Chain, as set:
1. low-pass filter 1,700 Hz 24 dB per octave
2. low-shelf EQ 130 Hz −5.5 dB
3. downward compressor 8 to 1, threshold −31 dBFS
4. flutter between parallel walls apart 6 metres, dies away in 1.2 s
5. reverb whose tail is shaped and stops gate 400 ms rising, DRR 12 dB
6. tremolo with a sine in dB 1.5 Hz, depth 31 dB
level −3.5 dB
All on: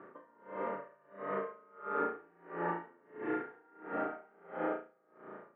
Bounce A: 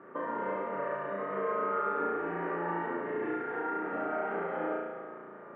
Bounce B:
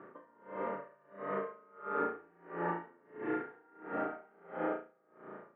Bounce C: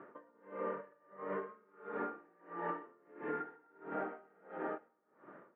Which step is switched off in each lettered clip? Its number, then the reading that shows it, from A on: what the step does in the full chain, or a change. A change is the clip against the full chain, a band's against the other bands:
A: 6, change in momentary loudness spread −10 LU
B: 2, 125 Hz band +2.0 dB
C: 4, change in integrated loudness −4.0 LU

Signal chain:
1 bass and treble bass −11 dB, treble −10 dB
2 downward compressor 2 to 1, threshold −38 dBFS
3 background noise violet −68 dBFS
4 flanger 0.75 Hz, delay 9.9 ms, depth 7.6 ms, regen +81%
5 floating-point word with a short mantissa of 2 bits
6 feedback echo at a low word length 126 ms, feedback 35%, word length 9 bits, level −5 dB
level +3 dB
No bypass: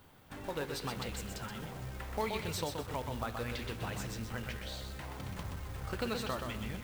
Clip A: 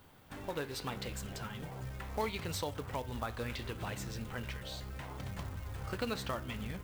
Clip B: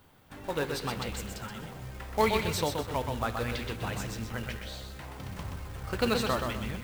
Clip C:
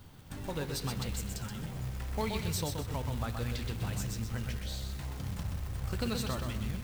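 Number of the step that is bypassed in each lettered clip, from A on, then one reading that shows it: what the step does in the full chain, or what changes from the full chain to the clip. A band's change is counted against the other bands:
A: 6, change in crest factor +2.0 dB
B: 2, average gain reduction 4.0 dB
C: 1, 125 Hz band +6.5 dB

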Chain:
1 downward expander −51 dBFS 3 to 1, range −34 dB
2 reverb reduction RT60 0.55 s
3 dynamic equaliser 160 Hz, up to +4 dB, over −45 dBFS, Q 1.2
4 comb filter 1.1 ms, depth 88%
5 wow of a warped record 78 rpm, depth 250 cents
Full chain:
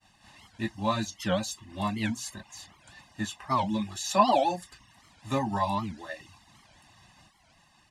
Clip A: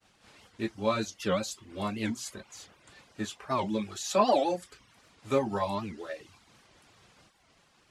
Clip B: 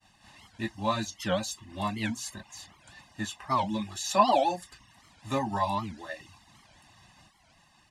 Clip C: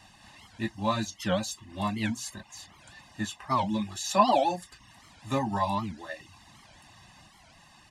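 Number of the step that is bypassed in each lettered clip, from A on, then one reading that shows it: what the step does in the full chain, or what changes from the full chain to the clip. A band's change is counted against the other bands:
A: 4, 500 Hz band +4.5 dB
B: 3, 125 Hz band −2.5 dB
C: 1, change in momentary loudness spread +2 LU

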